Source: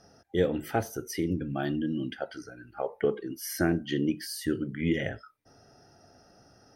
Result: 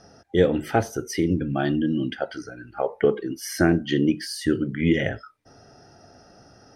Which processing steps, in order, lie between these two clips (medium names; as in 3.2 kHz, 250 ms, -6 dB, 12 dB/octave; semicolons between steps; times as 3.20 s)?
Bessel low-pass 7.8 kHz, order 2; trim +7 dB